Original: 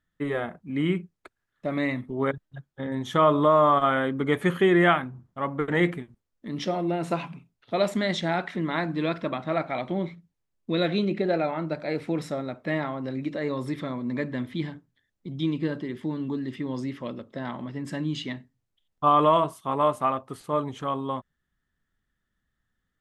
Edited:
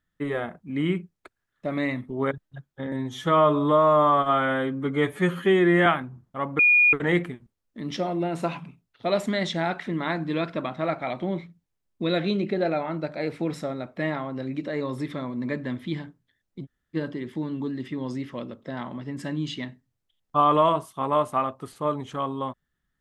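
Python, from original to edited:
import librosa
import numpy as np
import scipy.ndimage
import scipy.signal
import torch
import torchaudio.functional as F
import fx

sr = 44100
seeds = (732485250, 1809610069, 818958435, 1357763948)

y = fx.edit(x, sr, fx.stretch_span(start_s=2.92, length_s=1.96, factor=1.5),
    fx.insert_tone(at_s=5.61, length_s=0.34, hz=2440.0, db=-14.0),
    fx.room_tone_fill(start_s=15.33, length_s=0.3, crossfade_s=0.04), tone=tone)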